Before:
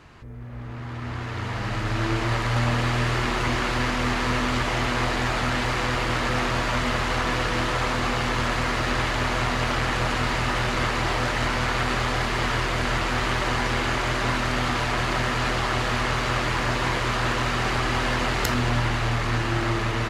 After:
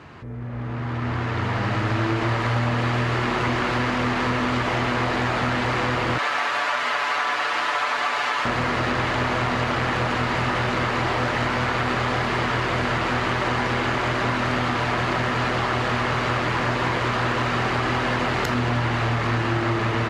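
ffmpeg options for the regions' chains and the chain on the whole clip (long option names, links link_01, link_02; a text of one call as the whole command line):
ffmpeg -i in.wav -filter_complex "[0:a]asettb=1/sr,asplit=3[link_01][link_02][link_03];[link_01]atrim=end=6.184[link_04];[link_02]atrim=start=6.18:end=8.45,asetpts=PTS-STARTPTS,afade=type=in:duration=0.004:curve=qsin,afade=type=out:start_time=2.266:duration=0.004:curve=qsin,highpass=730,aecho=1:1:6.9:0.77,atrim=end_sample=100107[link_05];[link_03]atrim=start=8.446[link_06];[link_04][link_05]acrossfade=duration=0.004:curve1=hsin:curve2=qsin[link_07];[link_07][link_06]acrossfade=duration=0.004:curve1=qsin:curve2=hsin,highpass=92,acompressor=threshold=-26dB:ratio=6,lowpass=frequency=2600:poles=1,volume=7.5dB" out.wav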